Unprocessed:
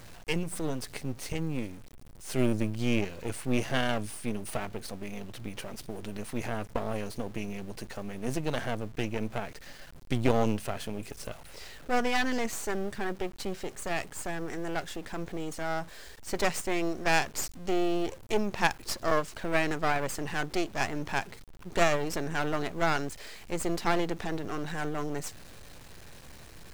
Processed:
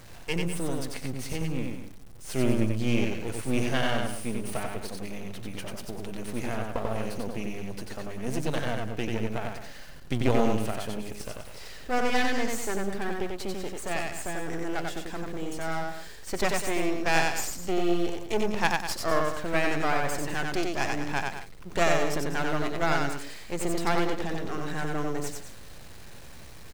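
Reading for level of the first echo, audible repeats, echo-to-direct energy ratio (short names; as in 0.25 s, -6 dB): -3.0 dB, 3, -2.5 dB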